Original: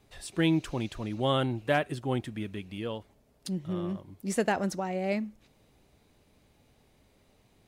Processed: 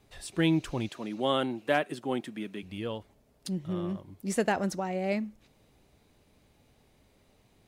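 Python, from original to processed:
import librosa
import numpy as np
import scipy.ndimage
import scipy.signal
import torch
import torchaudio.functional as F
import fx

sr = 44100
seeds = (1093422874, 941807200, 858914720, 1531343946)

y = fx.highpass(x, sr, hz=180.0, slope=24, at=(0.89, 2.63))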